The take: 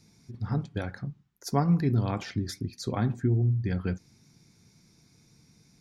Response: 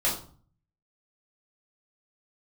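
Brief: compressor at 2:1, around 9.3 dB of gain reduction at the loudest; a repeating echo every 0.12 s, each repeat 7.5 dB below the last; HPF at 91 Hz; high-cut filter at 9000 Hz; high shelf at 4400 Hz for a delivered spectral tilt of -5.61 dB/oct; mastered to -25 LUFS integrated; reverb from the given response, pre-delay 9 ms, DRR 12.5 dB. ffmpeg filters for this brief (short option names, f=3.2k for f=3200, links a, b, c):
-filter_complex "[0:a]highpass=91,lowpass=9k,highshelf=f=4.4k:g=7.5,acompressor=threshold=-37dB:ratio=2,aecho=1:1:120|240|360|480|600:0.422|0.177|0.0744|0.0312|0.0131,asplit=2[a][b];[1:a]atrim=start_sample=2205,adelay=9[c];[b][c]afir=irnorm=-1:irlink=0,volume=-23dB[d];[a][d]amix=inputs=2:normalize=0,volume=11dB"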